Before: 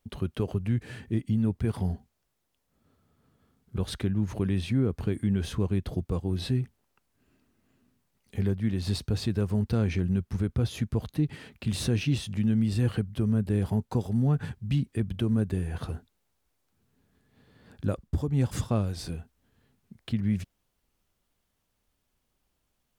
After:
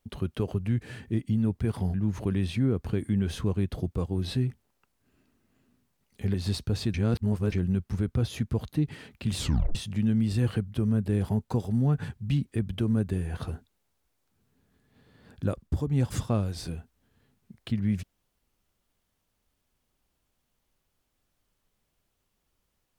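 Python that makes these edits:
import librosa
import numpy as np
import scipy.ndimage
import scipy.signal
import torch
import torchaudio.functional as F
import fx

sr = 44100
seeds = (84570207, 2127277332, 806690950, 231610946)

y = fx.edit(x, sr, fx.cut(start_s=1.94, length_s=2.14),
    fx.cut(start_s=8.48, length_s=0.27),
    fx.reverse_span(start_s=9.35, length_s=0.58),
    fx.tape_stop(start_s=11.78, length_s=0.38), tone=tone)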